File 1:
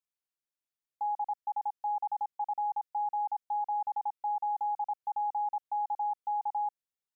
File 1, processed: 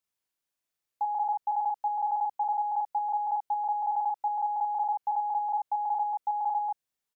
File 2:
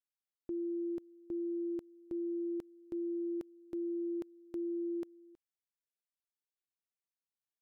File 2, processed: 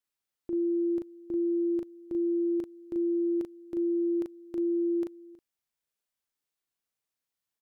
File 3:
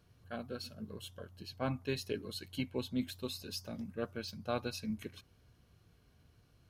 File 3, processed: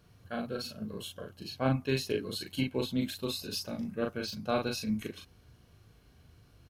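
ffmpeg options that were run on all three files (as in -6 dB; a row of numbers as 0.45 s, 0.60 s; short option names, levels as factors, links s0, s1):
-filter_complex "[0:a]asplit=2[s0][s1];[s1]adelay=38,volume=0.708[s2];[s0][s2]amix=inputs=2:normalize=0,volume=1.68"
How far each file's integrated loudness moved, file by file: +4.0 LU, +9.0 LU, +6.5 LU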